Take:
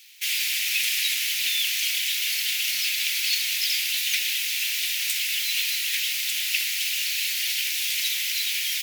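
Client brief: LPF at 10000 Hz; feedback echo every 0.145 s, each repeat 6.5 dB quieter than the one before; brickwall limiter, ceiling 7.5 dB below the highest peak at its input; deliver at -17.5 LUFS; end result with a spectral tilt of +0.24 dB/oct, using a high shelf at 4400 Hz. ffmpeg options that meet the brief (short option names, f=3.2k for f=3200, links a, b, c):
-af "lowpass=10k,highshelf=f=4.4k:g=-3.5,alimiter=limit=-19dB:level=0:latency=1,aecho=1:1:145|290|435|580|725|870:0.473|0.222|0.105|0.0491|0.0231|0.0109,volume=8dB"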